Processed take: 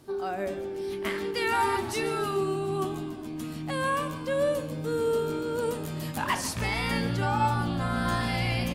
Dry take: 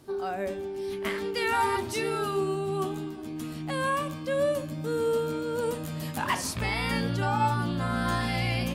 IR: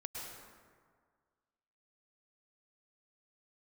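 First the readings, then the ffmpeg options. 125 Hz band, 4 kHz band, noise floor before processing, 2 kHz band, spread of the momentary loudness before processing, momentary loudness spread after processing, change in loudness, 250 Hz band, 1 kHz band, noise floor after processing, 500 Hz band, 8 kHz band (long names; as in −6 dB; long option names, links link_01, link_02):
0.0 dB, 0.0 dB, −37 dBFS, 0.0 dB, 8 LU, 8 LU, 0.0 dB, +0.5 dB, 0.0 dB, −36 dBFS, 0.0 dB, 0.0 dB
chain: -filter_complex "[0:a]asplit=7[link_01][link_02][link_03][link_04][link_05][link_06][link_07];[link_02]adelay=144,afreqshift=-43,volume=-15dB[link_08];[link_03]adelay=288,afreqshift=-86,volume=-19.9dB[link_09];[link_04]adelay=432,afreqshift=-129,volume=-24.8dB[link_10];[link_05]adelay=576,afreqshift=-172,volume=-29.6dB[link_11];[link_06]adelay=720,afreqshift=-215,volume=-34.5dB[link_12];[link_07]adelay=864,afreqshift=-258,volume=-39.4dB[link_13];[link_01][link_08][link_09][link_10][link_11][link_12][link_13]amix=inputs=7:normalize=0"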